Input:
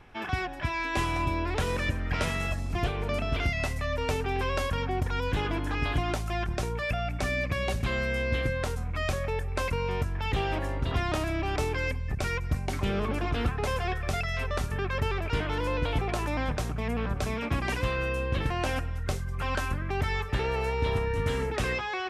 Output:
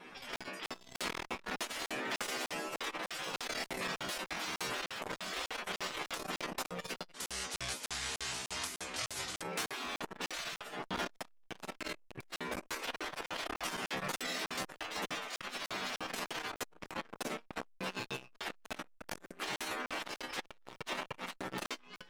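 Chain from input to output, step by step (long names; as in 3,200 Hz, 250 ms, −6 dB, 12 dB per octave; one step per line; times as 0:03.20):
wave folding −27.5 dBFS
stiff-string resonator 62 Hz, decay 0.67 s, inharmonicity 0.002
tape wow and flutter 18 cents
0:07.12–0:09.42: meter weighting curve ITU-R 468
downward compressor 10 to 1, threshold −44 dBFS, peak gain reduction 10 dB
parametric band 100 Hz +13 dB 1.6 octaves
gate on every frequency bin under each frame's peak −15 dB weak
regular buffer underruns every 0.30 s, samples 2,048, zero, from 0:00.36
saturating transformer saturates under 1,100 Hz
level +17 dB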